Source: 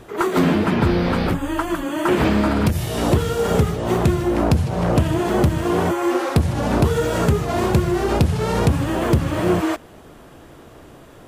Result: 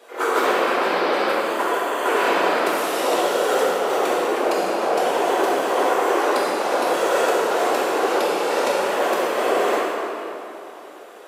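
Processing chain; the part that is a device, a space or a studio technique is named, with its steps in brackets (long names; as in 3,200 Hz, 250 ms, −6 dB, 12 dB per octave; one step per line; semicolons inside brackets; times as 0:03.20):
whispering ghost (random phases in short frames; high-pass filter 430 Hz 24 dB per octave; convolution reverb RT60 3.0 s, pre-delay 5 ms, DRR −7.5 dB)
level −4 dB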